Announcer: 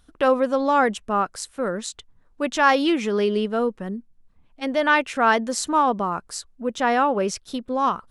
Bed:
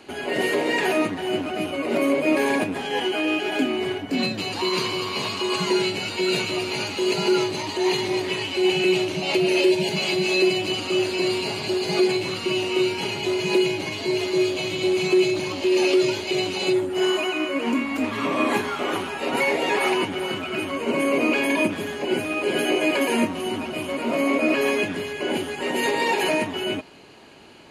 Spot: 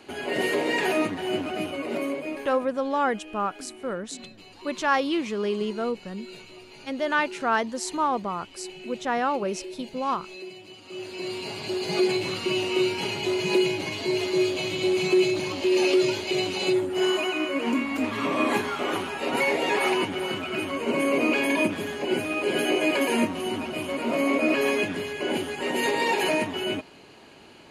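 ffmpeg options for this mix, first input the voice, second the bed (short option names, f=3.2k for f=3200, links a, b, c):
-filter_complex "[0:a]adelay=2250,volume=-5.5dB[a];[1:a]volume=16dB,afade=t=out:st=1.54:d=0.97:silence=0.125893,afade=t=in:st=10.81:d=1.38:silence=0.11885[b];[a][b]amix=inputs=2:normalize=0"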